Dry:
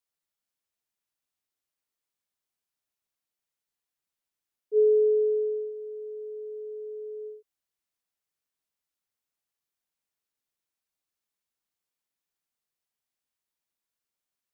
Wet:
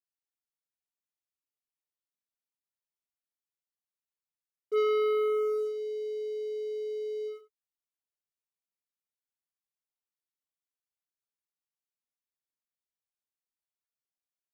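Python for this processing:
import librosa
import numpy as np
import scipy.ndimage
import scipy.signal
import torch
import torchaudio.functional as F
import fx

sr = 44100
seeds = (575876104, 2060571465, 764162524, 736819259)

y = fx.bandpass_q(x, sr, hz=330.0, q=0.54, at=(4.82, 5.58), fade=0.02)
y = fx.leveller(y, sr, passes=3)
y = fx.room_early_taps(y, sr, ms=(65, 76), db=(-15.0, -16.0))
y = F.gain(torch.from_numpy(y), -7.0).numpy()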